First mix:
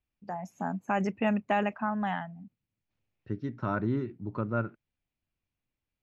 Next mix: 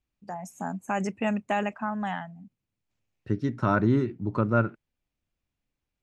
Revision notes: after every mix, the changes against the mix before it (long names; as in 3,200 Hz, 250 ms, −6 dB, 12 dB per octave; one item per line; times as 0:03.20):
second voice +7.0 dB
master: remove moving average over 5 samples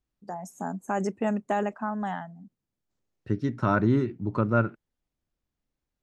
first voice: add graphic EQ with 15 bands 100 Hz −7 dB, 400 Hz +5 dB, 2,500 Hz −11 dB